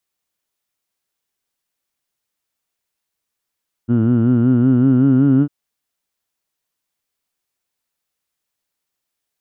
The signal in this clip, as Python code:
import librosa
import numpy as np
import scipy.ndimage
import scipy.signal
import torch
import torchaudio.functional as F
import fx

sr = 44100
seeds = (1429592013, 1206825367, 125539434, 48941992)

y = fx.formant_vowel(sr, seeds[0], length_s=1.6, hz=114.0, glide_st=3.5, vibrato_hz=5.3, vibrato_st=0.9, f1_hz=270.0, f2_hz=1400.0, f3_hz=2900.0)